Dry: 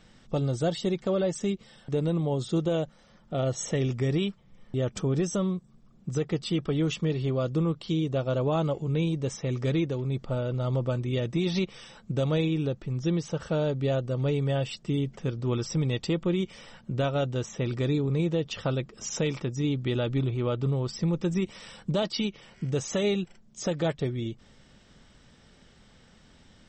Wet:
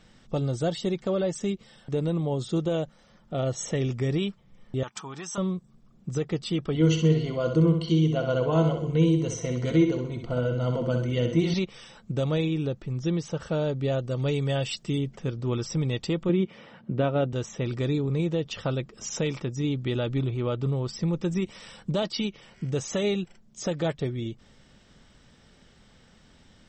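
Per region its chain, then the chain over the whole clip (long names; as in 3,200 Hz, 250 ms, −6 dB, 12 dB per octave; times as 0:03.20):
0:04.83–0:05.38: high-pass filter 300 Hz 6 dB per octave + low shelf with overshoot 700 Hz −8.5 dB, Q 3
0:06.74–0:11.54: EQ curve with evenly spaced ripples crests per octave 1.9, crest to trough 14 dB + repeating echo 64 ms, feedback 43%, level −6.5 dB
0:13.99–0:14.98: high-shelf EQ 2,300 Hz +7.5 dB + one half of a high-frequency compander decoder only
0:16.29–0:17.33: band-pass filter 180–2,900 Hz + low-shelf EQ 380 Hz +8 dB
whole clip: no processing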